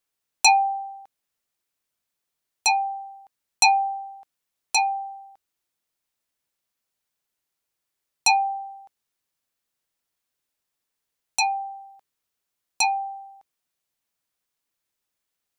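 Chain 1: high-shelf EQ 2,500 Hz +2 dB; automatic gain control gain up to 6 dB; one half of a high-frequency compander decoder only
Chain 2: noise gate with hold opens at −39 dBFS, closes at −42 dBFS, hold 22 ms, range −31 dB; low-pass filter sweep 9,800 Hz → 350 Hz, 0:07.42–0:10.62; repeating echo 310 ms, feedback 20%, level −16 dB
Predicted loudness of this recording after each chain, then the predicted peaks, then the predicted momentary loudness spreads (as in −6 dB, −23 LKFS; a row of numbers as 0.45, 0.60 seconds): −17.0, −20.5 LKFS; −3.0, −2.0 dBFS; 18, 23 LU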